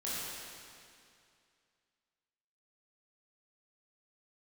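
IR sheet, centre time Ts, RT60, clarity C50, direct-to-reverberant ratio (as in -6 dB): 0.175 s, 2.4 s, -4.5 dB, -9.5 dB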